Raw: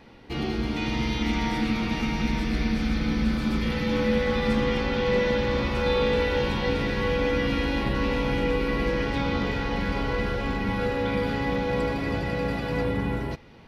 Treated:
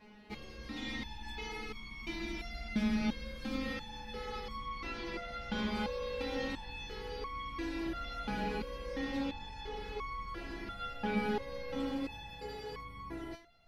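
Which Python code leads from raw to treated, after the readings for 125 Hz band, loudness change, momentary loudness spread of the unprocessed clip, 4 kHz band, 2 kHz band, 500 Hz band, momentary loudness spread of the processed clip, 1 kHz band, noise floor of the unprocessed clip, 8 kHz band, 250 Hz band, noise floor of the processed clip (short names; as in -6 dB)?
-18.5 dB, -13.5 dB, 4 LU, -11.0 dB, -13.0 dB, -15.5 dB, 10 LU, -10.5 dB, -31 dBFS, n/a, -12.5 dB, -49 dBFS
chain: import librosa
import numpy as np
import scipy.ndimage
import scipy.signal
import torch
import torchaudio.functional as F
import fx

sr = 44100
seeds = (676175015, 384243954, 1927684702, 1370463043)

y = fx.resonator_held(x, sr, hz=2.9, low_hz=210.0, high_hz=1100.0)
y = y * librosa.db_to_amplitude(6.0)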